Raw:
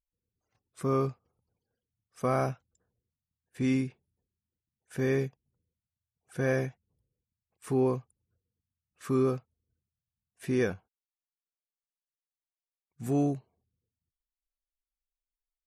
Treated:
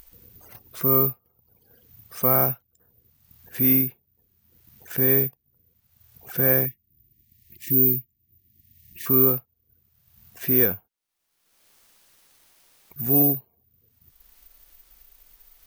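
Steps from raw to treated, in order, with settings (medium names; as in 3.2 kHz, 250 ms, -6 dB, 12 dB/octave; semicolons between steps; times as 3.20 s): upward compressor, threshold -35 dBFS; careless resampling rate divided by 3×, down filtered, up zero stuff; 6.66–9.06 s: brick-wall FIR band-stop 390–1700 Hz; trim +3.5 dB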